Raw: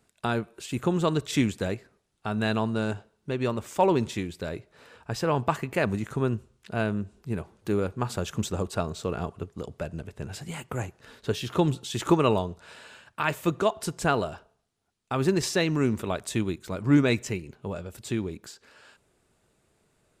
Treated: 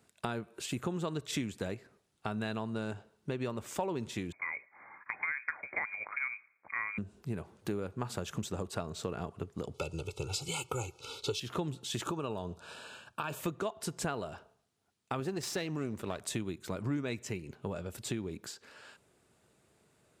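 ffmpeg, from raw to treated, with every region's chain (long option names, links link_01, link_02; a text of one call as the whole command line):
ffmpeg -i in.wav -filter_complex "[0:a]asettb=1/sr,asplit=3[link_01][link_02][link_03];[link_01]atrim=end=4.324[link_04];[link_02]atrim=start=4.32:end=6.98,asetpts=PTS-STARTPTS,afade=type=in:duration=0.004:curve=qsin,afade=type=out:start_time=2.656:duration=0.004:curve=qsin,highpass=320,lowpass=frequency=2200:width_type=q:width=0.5098,lowpass=frequency=2200:width_type=q:width=0.6013,lowpass=frequency=2200:width_type=q:width=0.9,lowpass=frequency=2200:width_type=q:width=2.563,afreqshift=-2600[link_05];[link_03]atrim=start=6.976[link_06];[link_04][link_05]acrossfade=duration=0.004:curve1=hsin:curve2=qsin[link_07];[link_07][link_06]acrossfade=duration=0.004:curve1=qsin:curve2=hsin,asettb=1/sr,asplit=3[link_08][link_09][link_10];[link_08]atrim=end=9.744[link_11];[link_09]atrim=start=9.74:end=11.4,asetpts=PTS-STARTPTS,afade=type=in:duration=0.004:curve=qsin,afade=type=out:start_time=1.656:duration=0.004:curve=qsin,asuperstop=centerf=1800:order=12:qfactor=2.5,equalizer=frequency=4900:width=0.55:gain=9.5,aecho=1:1:2.3:0.85,atrim=end_sample=73206[link_12];[link_10]atrim=start=11.396[link_13];[link_11][link_12]acrossfade=duration=0.004:curve1=hsin:curve2=qsin[link_14];[link_14][link_13]acrossfade=duration=0.004:curve1=qsin:curve2=hsin,asettb=1/sr,asplit=3[link_15][link_16][link_17];[link_15]atrim=end=12.034[link_18];[link_16]atrim=start=12.03:end=13.4,asetpts=PTS-STARTPTS,afade=type=in:duration=0.004:curve=qsin,afade=type=out:start_time=1.366:duration=0.004:curve=qsin,acompressor=threshold=-25dB:ratio=6:attack=3.2:release=140:knee=1:detection=peak,asuperstop=centerf=2000:order=4:qfactor=3.3[link_19];[link_17]atrim=start=13.396[link_20];[link_18][link_19]acrossfade=duration=0.004:curve1=hsin:curve2=qsin[link_21];[link_21][link_20]acrossfade=duration=0.004:curve1=qsin:curve2=hsin,asettb=1/sr,asplit=3[link_22][link_23][link_24];[link_22]atrim=end=15.204[link_25];[link_23]atrim=start=15.2:end=16.19,asetpts=PTS-STARTPTS,afade=type=in:duration=0.004:curve=qsin,afade=type=out:start_time=0.986:duration=0.004:curve=qsin,aeval=exprs='if(lt(val(0),0),0.447*val(0),val(0))':channel_layout=same,deesser=0.3[link_26];[link_24]atrim=start=16.186[link_27];[link_25][link_26]acrossfade=duration=0.004:curve1=hsin:curve2=qsin[link_28];[link_28][link_27]acrossfade=duration=0.004:curve1=qsin:curve2=hsin,highpass=77,acompressor=threshold=-33dB:ratio=5" out.wav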